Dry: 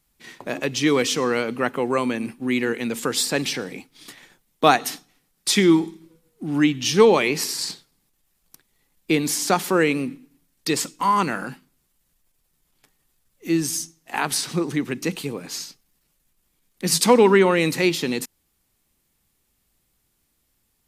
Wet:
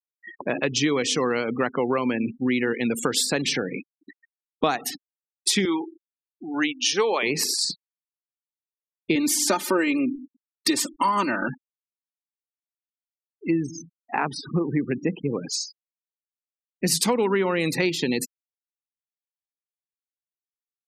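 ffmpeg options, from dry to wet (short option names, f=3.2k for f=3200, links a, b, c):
-filter_complex "[0:a]asettb=1/sr,asplit=3[a][b][c];[a]atrim=end=5.654[d];[b]atrim=start=5.65:end=7.23,asetpts=PTS-STARTPTS,afade=t=in:d=0.004:c=qsin,afade=t=out:st=1.576:d=0.004:c=qsin,highpass=490[e];[c]atrim=start=7.226[f];[d][e]acrossfade=d=0.004:c1=hsin:c2=qsin[g];[g][f]acrossfade=d=0.004:c1=qsin:c2=hsin,asettb=1/sr,asplit=3[h][i][j];[h]atrim=end=9.154[k];[i]atrim=start=9.15:end=11.48,asetpts=PTS-STARTPTS,afade=t=in:d=0.004:c=qsin,afade=t=out:st=2.326:d=0.004:c=qsin,aecho=1:1:3.3:0.97,atrim=end_sample=102753[l];[j]atrim=start=11.476[m];[k][l]acrossfade=d=0.004:c1=hsin:c2=qsin[n];[n][m]acrossfade=d=0.004:c1=qsin:c2=hsin,asettb=1/sr,asplit=3[o][p][q];[o]atrim=end=13.504[r];[p]atrim=start=13.5:end=15.3,asetpts=PTS-STARTPTS,afade=t=in:d=0.004:c=qsin,afade=t=out:st=1.796:d=0.004:c=qsin,lowpass=f=1.4k:p=1[s];[q]atrim=start=15.296[t];[r][s]acrossfade=d=0.004:c1=hsin:c2=qsin[u];[u][t]acrossfade=d=0.004:c1=qsin:c2=hsin,afftfilt=real='re*gte(hypot(re,im),0.0282)':imag='im*gte(hypot(re,im),0.0282)':win_size=1024:overlap=0.75,acompressor=threshold=-24dB:ratio=6,volume=4.5dB"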